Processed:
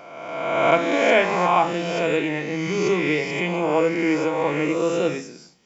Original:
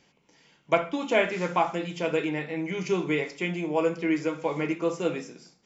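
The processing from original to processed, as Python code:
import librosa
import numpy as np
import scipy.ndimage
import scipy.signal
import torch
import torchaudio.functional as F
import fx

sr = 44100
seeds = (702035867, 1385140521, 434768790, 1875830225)

y = fx.spec_swells(x, sr, rise_s=1.51)
y = y * 10.0 ** (2.5 / 20.0)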